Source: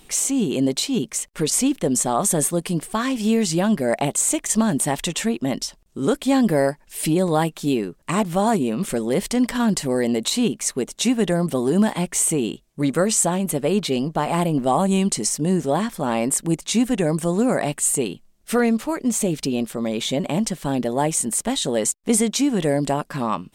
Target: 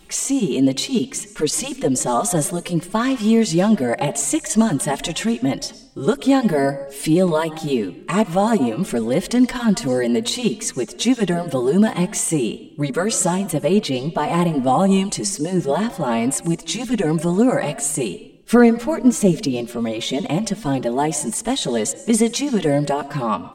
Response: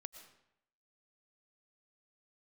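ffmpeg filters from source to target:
-filter_complex "[0:a]asettb=1/sr,asplit=3[a][b][c];[a]atrim=end=18.534[d];[b]atrim=start=18.53:end=19.36,asetpts=PTS-STARTPTS,afade=t=in:d=0.004:c=qsin,afade=t=out:st=0.826:d=0.004:c=qsin,lowshelf=f=490:g=6[e];[c]atrim=start=19.356[f];[d][e]acrossfade=d=0.004:c1=hsin:c2=qsin[g];[g][f]acrossfade=d=0.004:c1=qsin:c2=hsin,asplit=2[h][i];[i]lowpass=9.8k[j];[1:a]atrim=start_sample=2205,highshelf=f=12k:g=-6.5[k];[j][k]afir=irnorm=-1:irlink=0,volume=3dB[l];[h][l]amix=inputs=2:normalize=0,asplit=2[m][n];[n]adelay=3.3,afreqshift=2.5[o];[m][o]amix=inputs=2:normalize=1"

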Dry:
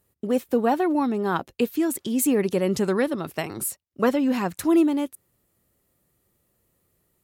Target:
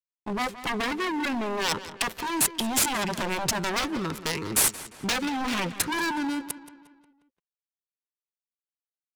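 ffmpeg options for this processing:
-filter_complex "[0:a]equalizer=f=270:t=o:w=0.78:g=-3.5,asplit=2[a][b];[b]acompressor=threshold=-34dB:ratio=8,volume=0dB[c];[a][c]amix=inputs=2:normalize=0,acrusher=bits=7:mix=0:aa=0.000001,asuperstop=centerf=680:order=20:qfactor=2,aeval=exprs='0.0596*(abs(mod(val(0)/0.0596+3,4)-2)-1)':c=same,crystalizer=i=4.5:c=0,adynamicsmooth=sensitivity=3:basefreq=1.2k,asplit=2[d][e];[e]adelay=141,lowpass=f=4.9k:p=1,volume=-14dB,asplit=2[f][g];[g]adelay=141,lowpass=f=4.9k:p=1,volume=0.5,asplit=2[h][i];[i]adelay=141,lowpass=f=4.9k:p=1,volume=0.5,asplit=2[j][k];[k]adelay=141,lowpass=f=4.9k:p=1,volume=0.5,asplit=2[l][m];[m]adelay=141,lowpass=f=4.9k:p=1,volume=0.5[n];[d][f][h][j][l][n]amix=inputs=6:normalize=0,atempo=0.79"

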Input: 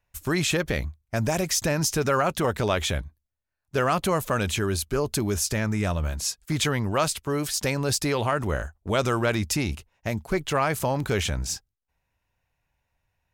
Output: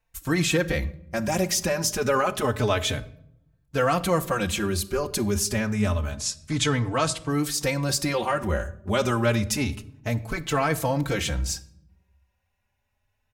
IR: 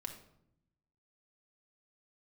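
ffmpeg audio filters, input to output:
-filter_complex "[0:a]asettb=1/sr,asplit=3[a][b][c];[a]atrim=end=6.114[d];[b]atrim=start=6.11:end=7.29,asetpts=PTS-STARTPTS,afade=t=in:d=0.004:c=qsin,afade=t=out:st=1.176:d=0.004:c=qsin,lowpass=f=9.5k:w=0.5412,lowpass=f=9.5k:w=1.3066[e];[c]atrim=start=7.286[f];[d][e]acrossfade=d=0.004:c1=hsin:c2=qsin[g];[g][f]acrossfade=d=0.004:c1=qsin:c2=hsin,asplit=2[h][i];[1:a]atrim=start_sample=2205[j];[i][j]afir=irnorm=-1:irlink=0,volume=-3dB[k];[h][k]amix=inputs=2:normalize=0,asplit=2[l][m];[m]adelay=4,afreqshift=0.28[n];[l][n]amix=inputs=2:normalize=1"

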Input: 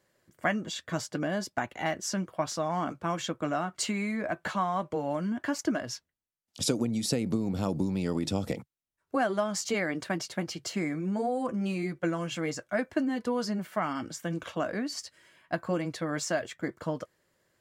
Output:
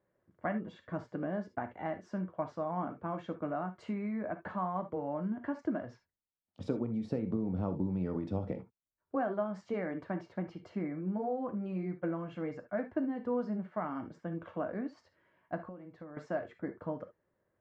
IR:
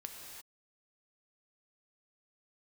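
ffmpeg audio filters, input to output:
-filter_complex "[1:a]atrim=start_sample=2205,atrim=end_sample=3528[a];[0:a][a]afir=irnorm=-1:irlink=0,asettb=1/sr,asplit=3[b][c][d];[b]atrim=end=15.634[e];[c]atrim=start=15.63:end=16.17,asetpts=PTS-STARTPTS,afade=t=in:d=0.004:c=qsin,afade=t=out:st=0.536:d=0.004:c=qsin,acompressor=threshold=-44dB:ratio=16[f];[d]atrim=start=16.166[g];[e][f]acrossfade=d=0.004:c1=hsin:c2=qsin[h];[h][g]acrossfade=d=0.004:c1=qsin:c2=hsin,lowpass=1.2k"

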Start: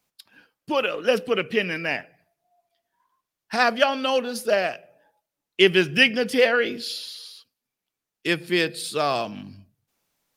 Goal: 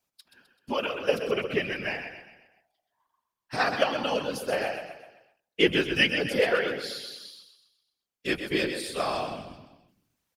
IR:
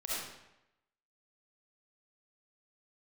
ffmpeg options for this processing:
-af "aecho=1:1:128|256|384|512|640:0.398|0.183|0.0842|0.0388|0.0178,afftfilt=real='hypot(re,im)*cos(2*PI*random(0))':imag='hypot(re,im)*sin(2*PI*random(1))':win_size=512:overlap=0.75"

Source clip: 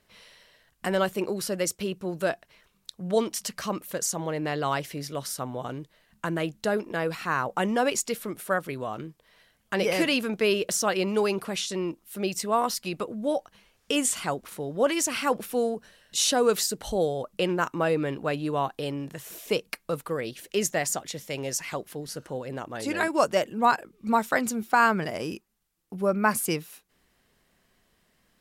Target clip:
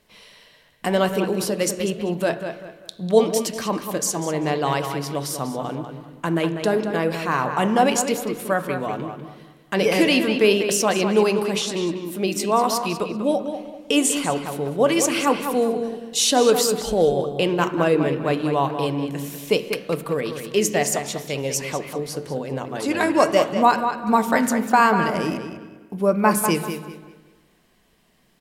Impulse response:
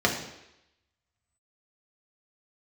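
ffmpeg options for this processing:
-filter_complex "[0:a]asplit=2[a][b];[b]adelay=195,lowpass=f=4.1k:p=1,volume=-7.5dB,asplit=2[c][d];[d]adelay=195,lowpass=f=4.1k:p=1,volume=0.31,asplit=2[e][f];[f]adelay=195,lowpass=f=4.1k:p=1,volume=0.31,asplit=2[g][h];[h]adelay=195,lowpass=f=4.1k:p=1,volume=0.31[i];[c][e][g][i]amix=inputs=4:normalize=0[j];[a][j]amix=inputs=2:normalize=0,flanger=delay=1.8:depth=9.4:regen=90:speed=0.84:shape=sinusoidal,asplit=2[k][l];[1:a]atrim=start_sample=2205,asetrate=27342,aresample=44100[m];[l][m]afir=irnorm=-1:irlink=0,volume=-25dB[n];[k][n]amix=inputs=2:normalize=0,volume=8.5dB"

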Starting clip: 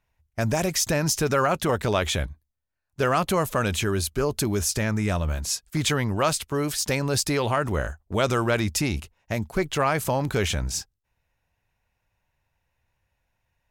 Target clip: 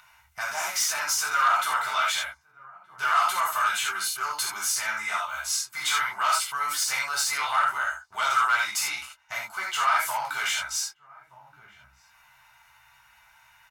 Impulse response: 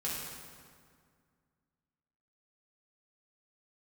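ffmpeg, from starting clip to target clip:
-filter_complex "[0:a]asplit=2[a][b];[b]adelay=1224,volume=-30dB,highshelf=f=4k:g=-27.6[c];[a][c]amix=inputs=2:normalize=0,acrossover=split=390[d][e];[d]acompressor=threshold=-44dB:ratio=5[f];[f][e]amix=inputs=2:normalize=0[g];[1:a]atrim=start_sample=2205,atrim=end_sample=3528,asetrate=35721,aresample=44100[h];[g][h]afir=irnorm=-1:irlink=0,asoftclip=type=tanh:threshold=-18.5dB,lowshelf=f=750:t=q:w=3:g=-13,aecho=1:1:1.4:0.46,acompressor=mode=upward:threshold=-39dB:ratio=2.5,bass=f=250:g=-10,treble=f=4k:g=0,volume=-1.5dB"

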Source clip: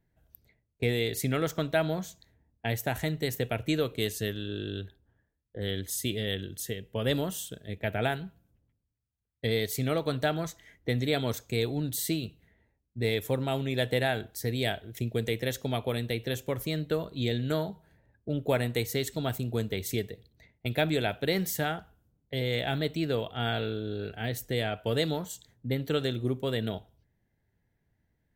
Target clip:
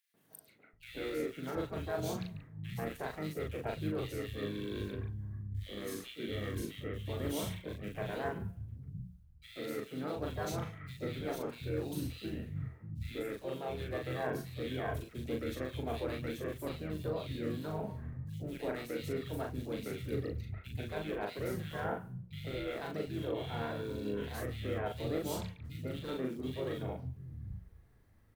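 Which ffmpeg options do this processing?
-filter_complex "[0:a]bandreject=f=60:t=h:w=6,bandreject=f=120:t=h:w=6,bandreject=f=180:t=h:w=6,bandreject=f=240:t=h:w=6,acrossover=split=3000[a][b];[b]acompressor=threshold=-46dB:ratio=4:attack=1:release=60[c];[a][c]amix=inputs=2:normalize=0,equalizer=f=7.4k:t=o:w=0.51:g=-7.5,areverse,acompressor=threshold=-43dB:ratio=8,areverse,aphaser=in_gain=1:out_gain=1:delay=2.9:decay=0.23:speed=0.92:type=triangular,acrusher=bits=7:mode=log:mix=0:aa=0.000001,asplit=3[d][e][f];[e]asetrate=29433,aresample=44100,atempo=1.49831,volume=-4dB[g];[f]asetrate=52444,aresample=44100,atempo=0.840896,volume=-11dB[h];[d][g][h]amix=inputs=3:normalize=0,asplit=2[i][j];[j]adelay=39,volume=-3dB[k];[i][k]amix=inputs=2:normalize=0,acrossover=split=160|2300[l][m][n];[m]adelay=140[o];[l]adelay=730[p];[p][o][n]amix=inputs=3:normalize=0,volume=5.5dB"

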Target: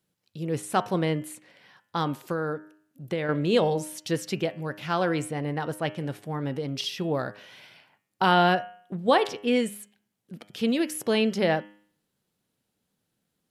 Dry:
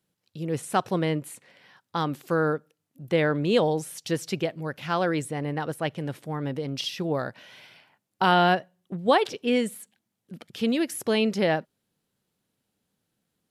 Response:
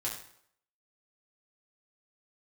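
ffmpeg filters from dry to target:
-filter_complex "[0:a]bandreject=f=102.7:t=h:w=4,bandreject=f=205.4:t=h:w=4,bandreject=f=308.1:t=h:w=4,bandreject=f=410.8:t=h:w=4,bandreject=f=513.5:t=h:w=4,bandreject=f=616.2:t=h:w=4,bandreject=f=718.9:t=h:w=4,bandreject=f=821.6:t=h:w=4,bandreject=f=924.3:t=h:w=4,bandreject=f=1.027k:t=h:w=4,bandreject=f=1.1297k:t=h:w=4,bandreject=f=1.2324k:t=h:w=4,bandreject=f=1.3351k:t=h:w=4,bandreject=f=1.4378k:t=h:w=4,bandreject=f=1.5405k:t=h:w=4,bandreject=f=1.6432k:t=h:w=4,bandreject=f=1.7459k:t=h:w=4,bandreject=f=1.8486k:t=h:w=4,bandreject=f=1.9513k:t=h:w=4,bandreject=f=2.054k:t=h:w=4,bandreject=f=2.1567k:t=h:w=4,bandreject=f=2.2594k:t=h:w=4,bandreject=f=2.3621k:t=h:w=4,bandreject=f=2.4648k:t=h:w=4,bandreject=f=2.5675k:t=h:w=4,bandreject=f=2.6702k:t=h:w=4,bandreject=f=2.7729k:t=h:w=4,bandreject=f=2.8756k:t=h:w=4,bandreject=f=2.9783k:t=h:w=4,bandreject=f=3.081k:t=h:w=4,bandreject=f=3.1837k:t=h:w=4,bandreject=f=3.2864k:t=h:w=4,asettb=1/sr,asplit=3[a][b][c];[a]atrim=end=2.174[d];[b]atrim=start=2.17:end=3.29,asetpts=PTS-STARTPTS,afade=t=in:d=0.004:c=qsin,afade=t=out:st=1.116:d=0.004:c=qsin,acompressor=threshold=-26dB:ratio=5[e];[c]atrim=start=3.286[f];[d][e]acrossfade=d=0.004:c1=hsin:c2=qsin[g];[g][f]acrossfade=d=0.004:c1=qsin:c2=hsin"

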